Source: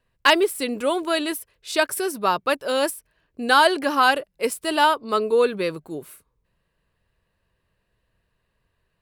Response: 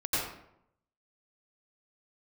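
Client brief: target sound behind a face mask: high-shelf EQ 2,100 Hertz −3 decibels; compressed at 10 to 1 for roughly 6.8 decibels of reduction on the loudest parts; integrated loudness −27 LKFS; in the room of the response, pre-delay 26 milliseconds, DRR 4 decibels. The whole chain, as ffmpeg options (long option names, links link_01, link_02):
-filter_complex "[0:a]acompressor=threshold=-18dB:ratio=10,asplit=2[link_01][link_02];[1:a]atrim=start_sample=2205,adelay=26[link_03];[link_02][link_03]afir=irnorm=-1:irlink=0,volume=-13dB[link_04];[link_01][link_04]amix=inputs=2:normalize=0,highshelf=frequency=2100:gain=-3,volume=-2.5dB"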